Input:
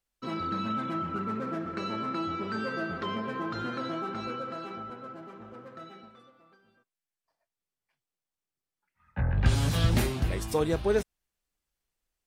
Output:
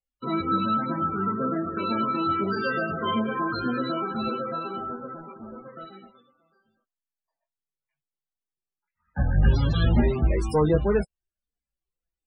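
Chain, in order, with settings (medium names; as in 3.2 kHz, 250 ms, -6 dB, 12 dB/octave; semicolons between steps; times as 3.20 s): waveshaping leveller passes 2; chorus voices 6, 0.17 Hz, delay 17 ms, depth 4.3 ms; loudest bins only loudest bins 32; trim +2 dB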